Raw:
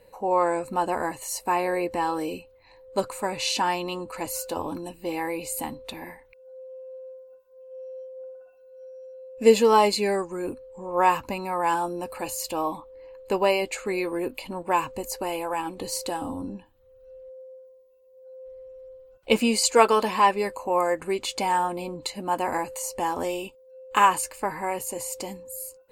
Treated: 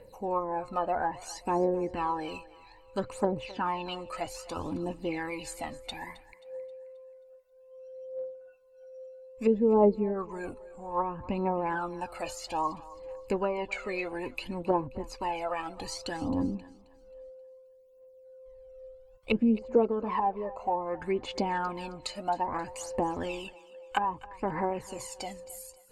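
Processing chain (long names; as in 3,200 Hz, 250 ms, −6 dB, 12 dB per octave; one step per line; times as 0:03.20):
phase shifter 0.61 Hz, delay 1.7 ms, feedback 68%
treble cut that deepens with the level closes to 480 Hz, closed at −17 dBFS
feedback echo with a high-pass in the loop 266 ms, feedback 42%, high-pass 420 Hz, level −18 dB
level −4.5 dB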